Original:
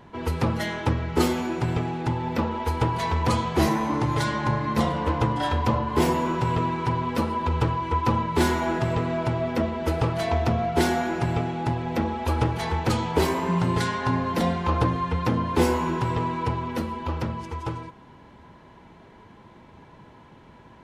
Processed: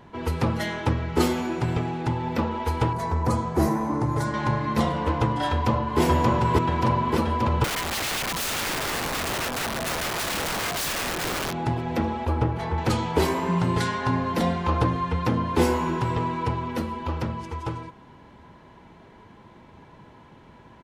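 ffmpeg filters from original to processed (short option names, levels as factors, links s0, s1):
-filter_complex "[0:a]asettb=1/sr,asplit=3[s0][s1][s2];[s0]atrim=end=2.934[s3];[s1]atrim=start=2.93:end=4.34,asetpts=PTS-STARTPTS,afade=t=in:d=0.004:c=qsin,afade=t=out:st=1.406:d=0.004:c=qsin,equalizer=f=3100:w=1:g=-14.5[s4];[s2]atrim=start=4.336[s5];[s3][s4]acrossfade=d=0.004:c1=hsin:c2=qsin[s6];[s6][s5]acrossfade=d=0.004:c1=qsin:c2=hsin,asplit=2[s7][s8];[s8]afade=t=in:st=5.51:d=0.01,afade=t=out:st=6:d=0.01,aecho=0:1:580|1160|1740|2320|2900|3480|4060|4640|5220|5800|6380|6960:0.944061|0.755249|0.604199|0.483359|0.386687|0.30935|0.24748|0.197984|0.158387|0.12671|0.101368|0.0810942[s9];[s7][s9]amix=inputs=2:normalize=0,asettb=1/sr,asplit=3[s10][s11][s12];[s10]atrim=end=7.644[s13];[s11]atrim=start=7.64:end=11.53,asetpts=PTS-STARTPTS,afade=t=in:d=0.004:c=qsin,afade=t=out:st=3.886:d=0.004:c=qsin,aeval=exprs='(mod(14.1*val(0)+1,2)-1)/14.1':c=same[s14];[s12]atrim=start=11.526[s15];[s13][s14]acrossfade=d=0.004:c1=hsin:c2=qsin[s16];[s16][s15]acrossfade=d=0.004:c1=qsin:c2=hsin,asettb=1/sr,asplit=3[s17][s18][s19];[s17]atrim=end=12.254[s20];[s18]atrim=start=12.25:end=12.78,asetpts=PTS-STARTPTS,afade=t=in:d=0.004:c=qsin,afade=t=out:st=0.526:d=0.004:c=qsin,equalizer=f=12000:t=o:w=3:g=-13[s21];[s19]atrim=start=12.776[s22];[s20][s21]acrossfade=d=0.004:c1=hsin:c2=qsin[s23];[s23][s22]acrossfade=d=0.004:c1=qsin:c2=hsin"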